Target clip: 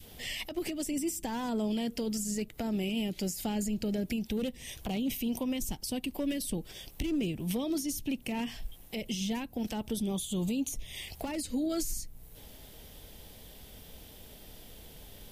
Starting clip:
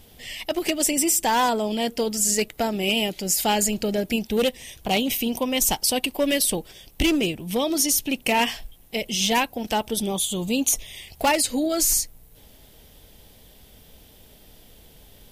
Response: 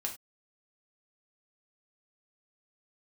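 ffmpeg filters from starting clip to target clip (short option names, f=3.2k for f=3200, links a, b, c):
-filter_complex "[0:a]adynamicequalizer=threshold=0.0158:dfrequency=760:dqfactor=1.1:tfrequency=760:tqfactor=1.1:attack=5:release=100:ratio=0.375:range=2:mode=cutabove:tftype=bell,acrossover=split=300[a][b];[b]acompressor=threshold=-34dB:ratio=10[c];[a][c]amix=inputs=2:normalize=0,alimiter=level_in=0.5dB:limit=-24dB:level=0:latency=1:release=154,volume=-0.5dB"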